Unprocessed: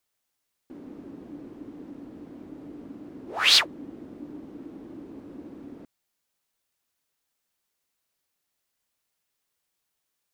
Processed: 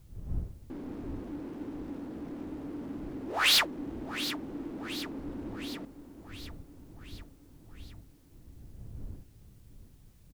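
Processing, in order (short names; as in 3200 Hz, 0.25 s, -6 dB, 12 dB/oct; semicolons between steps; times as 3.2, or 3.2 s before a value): G.711 law mismatch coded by mu; wind noise 93 Hz -45 dBFS; hard clip -18.5 dBFS, distortion -9 dB; feedback echo 0.72 s, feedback 57%, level -12 dB; gain -1.5 dB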